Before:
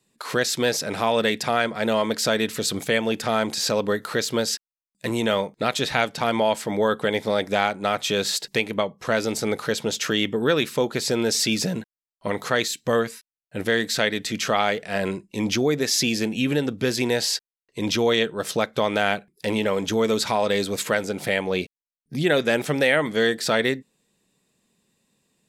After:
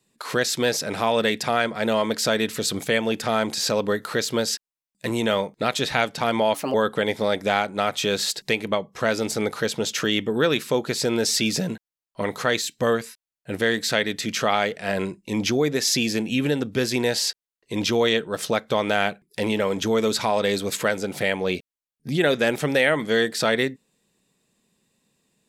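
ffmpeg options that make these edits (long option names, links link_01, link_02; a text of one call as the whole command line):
ffmpeg -i in.wav -filter_complex "[0:a]asplit=3[link_01][link_02][link_03];[link_01]atrim=end=6.544[link_04];[link_02]atrim=start=6.54:end=6.8,asetpts=PTS-STARTPTS,asetrate=57771,aresample=44100[link_05];[link_03]atrim=start=6.796[link_06];[link_04][link_05]acrossfade=duration=0.004:curve1=hsin:curve2=hsin[link_07];[link_07][link_06]acrossfade=duration=0.004:curve1=hsin:curve2=hsin" out.wav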